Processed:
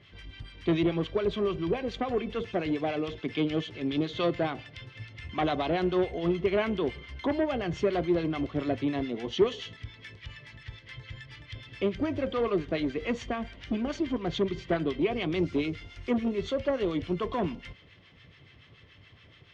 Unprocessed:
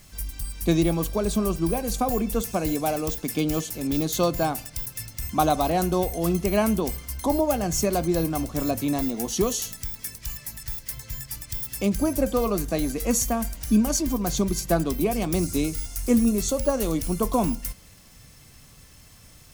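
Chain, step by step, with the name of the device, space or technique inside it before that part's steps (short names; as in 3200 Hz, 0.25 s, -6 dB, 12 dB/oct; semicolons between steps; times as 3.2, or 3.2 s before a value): guitar amplifier with harmonic tremolo (harmonic tremolo 7 Hz, depth 70%, crossover 950 Hz; soft clip -19.5 dBFS, distortion -14 dB; speaker cabinet 88–3500 Hz, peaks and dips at 100 Hz +5 dB, 210 Hz -6 dB, 390 Hz +7 dB, 810 Hz -4 dB, 2000 Hz +7 dB, 3200 Hz +9 dB)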